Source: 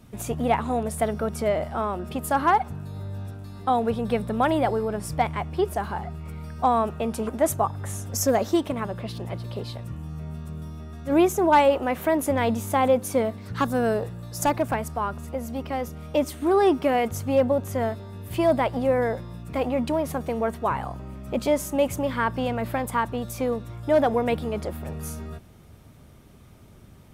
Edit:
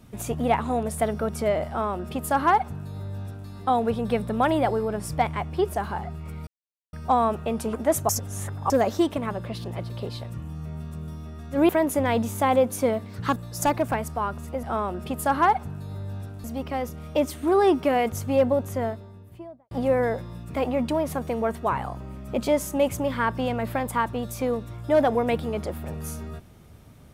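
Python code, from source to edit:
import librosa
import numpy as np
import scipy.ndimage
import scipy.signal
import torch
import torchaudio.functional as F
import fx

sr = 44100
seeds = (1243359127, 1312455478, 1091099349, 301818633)

y = fx.studio_fade_out(x, sr, start_s=17.52, length_s=1.18)
y = fx.edit(y, sr, fx.duplicate(start_s=1.68, length_s=1.81, to_s=15.43),
    fx.insert_silence(at_s=6.47, length_s=0.46),
    fx.reverse_span(start_s=7.63, length_s=0.61),
    fx.cut(start_s=11.23, length_s=0.78),
    fx.cut(start_s=13.68, length_s=0.48), tone=tone)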